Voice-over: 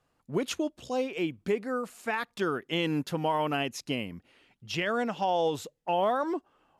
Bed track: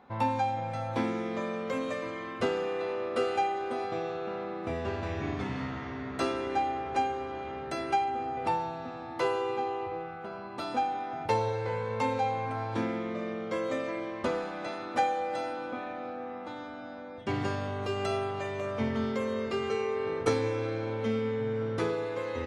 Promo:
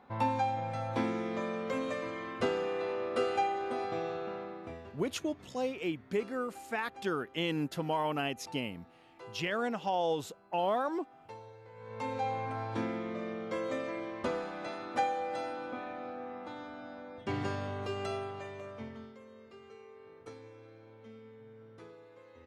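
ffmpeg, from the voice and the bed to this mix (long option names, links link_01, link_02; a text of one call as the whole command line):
ffmpeg -i stem1.wav -i stem2.wav -filter_complex "[0:a]adelay=4650,volume=-4dB[link_01];[1:a]volume=15.5dB,afade=type=out:start_time=4.14:duration=0.81:silence=0.112202,afade=type=in:start_time=11.74:duration=0.58:silence=0.133352,afade=type=out:start_time=17.72:duration=1.44:silence=0.11885[link_02];[link_01][link_02]amix=inputs=2:normalize=0" out.wav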